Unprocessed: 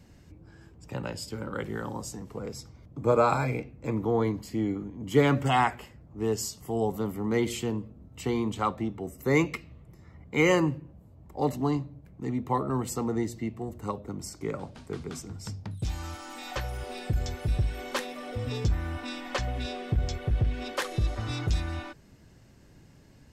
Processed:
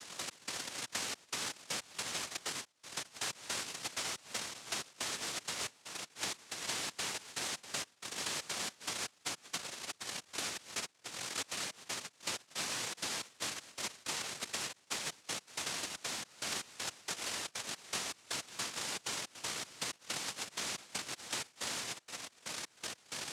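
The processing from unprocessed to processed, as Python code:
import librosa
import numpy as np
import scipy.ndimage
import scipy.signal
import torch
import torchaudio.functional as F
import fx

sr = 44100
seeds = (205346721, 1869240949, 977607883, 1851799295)

y = fx.rotary(x, sr, hz=5.0)
y = 10.0 ** (-15.5 / 20.0) * np.tanh(y / 10.0 ** (-15.5 / 20.0))
y = fx.over_compress(y, sr, threshold_db=-31.0, ratio=-0.5)
y = fx.cheby_ripple(y, sr, hz=570.0, ripple_db=9, at=(11.55, 12.72))
y = fx.doubler(y, sr, ms=32.0, db=-2.5, at=(16.49, 17.01))
y = y + 10.0 ** (-16.0 / 20.0) * np.pad(y, (int(111 * sr / 1000.0), 0))[:len(y)]
y = fx.step_gate(y, sr, bpm=159, pattern='..x..xxxx.xx..xx', floor_db=-24.0, edge_ms=4.5)
y = np.clip(y, -10.0 ** (-34.5 / 20.0), 10.0 ** (-34.5 / 20.0))
y = fx.highpass(y, sr, hz=400.0, slope=6, at=(2.59, 3.15))
y = fx.noise_vocoder(y, sr, seeds[0], bands=1)
y = fx.band_squash(y, sr, depth_pct=100)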